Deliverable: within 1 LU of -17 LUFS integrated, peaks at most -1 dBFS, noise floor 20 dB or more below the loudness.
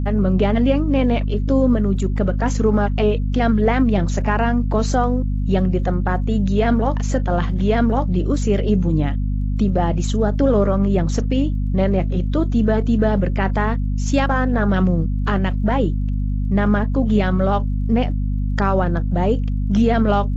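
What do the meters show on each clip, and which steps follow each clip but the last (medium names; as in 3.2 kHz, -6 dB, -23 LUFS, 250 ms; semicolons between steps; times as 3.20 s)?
tick rate 22 per s; hum 50 Hz; highest harmonic 250 Hz; hum level -18 dBFS; loudness -19.0 LUFS; peak level -5.0 dBFS; loudness target -17.0 LUFS
-> de-click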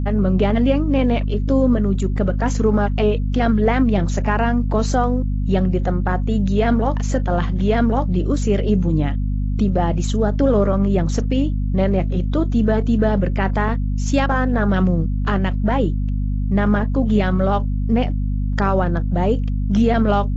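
tick rate 0 per s; hum 50 Hz; highest harmonic 250 Hz; hum level -18 dBFS
-> de-hum 50 Hz, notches 5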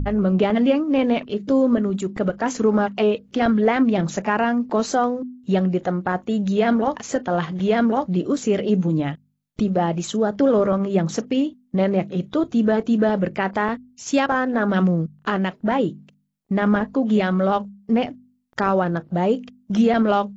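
hum not found; loudness -21.0 LUFS; peak level -7.5 dBFS; loudness target -17.0 LUFS
-> trim +4 dB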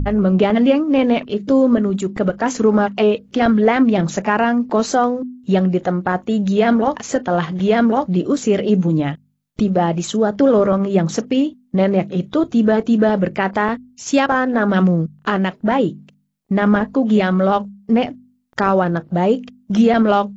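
loudness -17.0 LUFS; peak level -3.5 dBFS; noise floor -57 dBFS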